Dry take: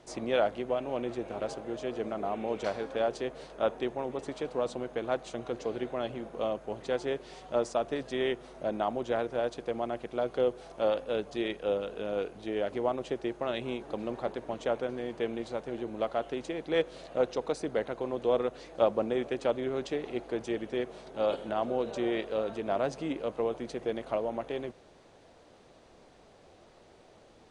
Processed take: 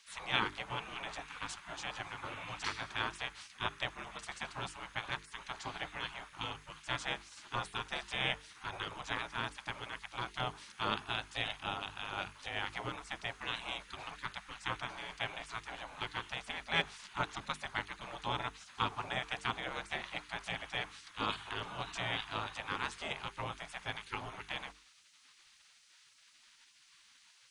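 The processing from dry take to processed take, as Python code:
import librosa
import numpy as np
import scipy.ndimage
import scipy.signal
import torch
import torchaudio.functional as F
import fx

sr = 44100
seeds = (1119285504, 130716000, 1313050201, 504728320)

y = fx.spec_gate(x, sr, threshold_db=-20, keep='weak')
y = fx.hum_notches(y, sr, base_hz=50, count=9)
y = y * 10.0 ** (6.5 / 20.0)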